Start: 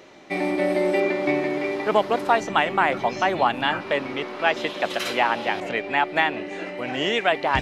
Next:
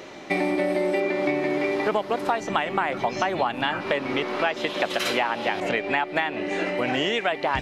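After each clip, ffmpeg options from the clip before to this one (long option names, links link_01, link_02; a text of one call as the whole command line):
ffmpeg -i in.wav -af "acompressor=threshold=-28dB:ratio=6,volume=7dB" out.wav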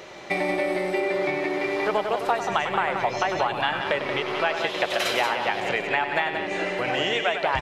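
ffmpeg -i in.wav -filter_complex "[0:a]equalizer=frequency=260:width=2.4:gain=-11.5,asplit=2[link_01][link_02];[link_02]aecho=0:1:99.13|180.8:0.355|0.447[link_03];[link_01][link_03]amix=inputs=2:normalize=0" out.wav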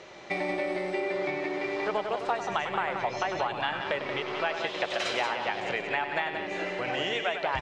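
ffmpeg -i in.wav -af "lowpass=frequency=7700:width=0.5412,lowpass=frequency=7700:width=1.3066,volume=-5.5dB" out.wav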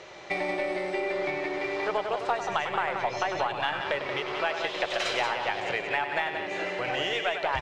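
ffmpeg -i in.wav -filter_complex "[0:a]equalizer=frequency=230:width=1.8:gain=-7,asplit=2[link_01][link_02];[link_02]aeval=exprs='clip(val(0),-1,0.015)':channel_layout=same,volume=-11dB[link_03];[link_01][link_03]amix=inputs=2:normalize=0" out.wav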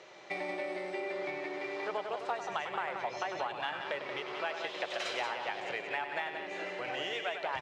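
ffmpeg -i in.wav -af "highpass=160,volume=-7.5dB" out.wav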